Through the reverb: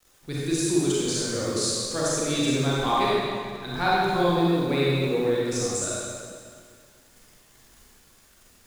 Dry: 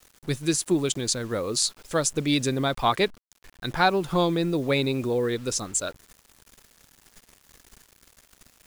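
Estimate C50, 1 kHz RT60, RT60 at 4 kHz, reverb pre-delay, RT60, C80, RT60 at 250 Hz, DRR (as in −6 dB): −5.5 dB, 2.1 s, 1.8 s, 31 ms, 2.1 s, −2.5 dB, 2.2 s, −7.5 dB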